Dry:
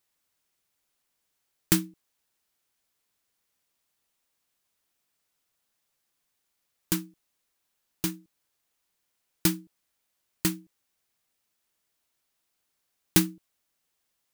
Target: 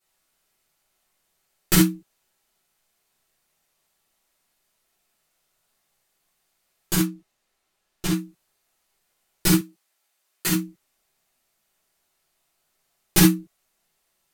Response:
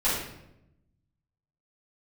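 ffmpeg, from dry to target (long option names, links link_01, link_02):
-filter_complex "[0:a]asettb=1/sr,asplit=3[link_01][link_02][link_03];[link_01]atrim=end=6.984[link_04];[link_02]atrim=start=6.98:end=8.11,asetpts=PTS-STARTPTS,afade=type=in:duration=0.004:curve=qsin,afade=type=out:start_time=1.126:duration=0.004:curve=qsin,highshelf=frequency=8800:gain=-9[link_05];[link_03]atrim=start=8.106[link_06];[link_04][link_05]acrossfade=duration=0.004:curve1=hsin:curve2=qsin[link_07];[link_07][link_06]acrossfade=duration=0.004:curve1=qsin:curve2=hsin,asettb=1/sr,asplit=3[link_08][link_09][link_10];[link_08]atrim=end=9.524[link_11];[link_09]atrim=start=9.52:end=10.47,asetpts=PTS-STARTPTS,afade=type=in:duration=0.004:curve=qsin,afade=type=out:start_time=0.946:duration=0.004:curve=qsin,highpass=frequency=690:poles=1[link_12];[link_10]atrim=start=10.466[link_13];[link_11][link_12]acrossfade=duration=0.004:curve1=hsin:curve2=qsin[link_14];[link_14][link_13]acrossfade=duration=0.004:curve1=qsin:curve2=hsin[link_15];[1:a]atrim=start_sample=2205,atrim=end_sample=3087,asetrate=33075,aresample=44100[link_16];[link_15][link_16]afir=irnorm=-1:irlink=0,volume=-4.5dB"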